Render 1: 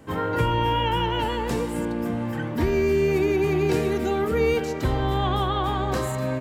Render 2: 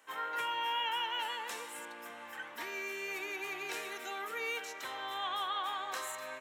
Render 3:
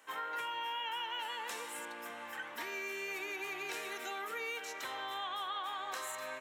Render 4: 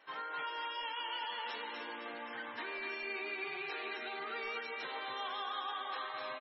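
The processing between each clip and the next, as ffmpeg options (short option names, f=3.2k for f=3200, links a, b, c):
-af "highpass=1.2k,bandreject=f=4.7k:w=8.7,volume=-5dB"
-af "acompressor=threshold=-40dB:ratio=3,volume=2dB"
-af "asoftclip=type=tanh:threshold=-34.5dB,aecho=1:1:249|498|747|996|1245|1494:0.631|0.278|0.122|0.0537|0.0236|0.0104" -ar 24000 -c:a libmp3lame -b:a 16k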